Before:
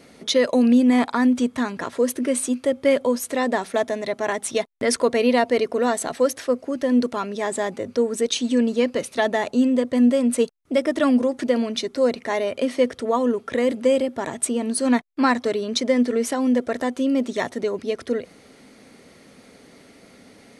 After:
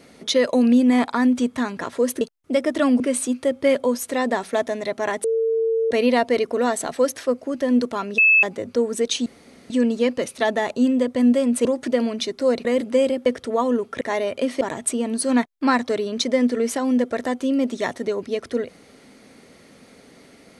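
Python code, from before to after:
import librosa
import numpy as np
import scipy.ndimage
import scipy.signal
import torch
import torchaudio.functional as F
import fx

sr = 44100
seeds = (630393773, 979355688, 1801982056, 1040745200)

y = fx.edit(x, sr, fx.bleep(start_s=4.45, length_s=0.67, hz=451.0, db=-17.5),
    fx.bleep(start_s=7.39, length_s=0.25, hz=2610.0, db=-11.0),
    fx.insert_room_tone(at_s=8.47, length_s=0.44),
    fx.move(start_s=10.42, length_s=0.79, to_s=2.21),
    fx.swap(start_s=12.21, length_s=0.6, other_s=13.56, other_length_s=0.61), tone=tone)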